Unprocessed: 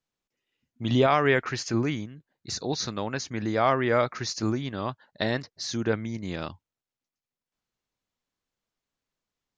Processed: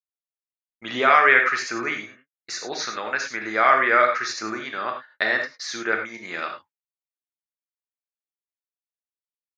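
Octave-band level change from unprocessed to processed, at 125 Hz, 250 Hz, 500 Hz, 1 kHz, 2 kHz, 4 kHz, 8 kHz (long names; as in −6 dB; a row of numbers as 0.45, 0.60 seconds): −18.5, −6.0, +0.5, +8.0, +12.0, +2.0, +1.5 decibels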